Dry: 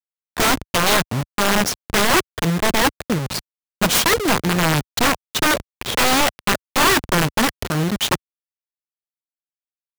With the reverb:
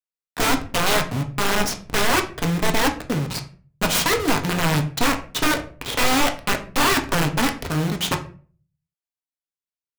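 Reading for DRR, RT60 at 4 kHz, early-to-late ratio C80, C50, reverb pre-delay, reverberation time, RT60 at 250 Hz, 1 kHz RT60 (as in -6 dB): 4.0 dB, 0.30 s, 17.5 dB, 12.5 dB, 4 ms, 0.40 s, 0.55 s, 0.35 s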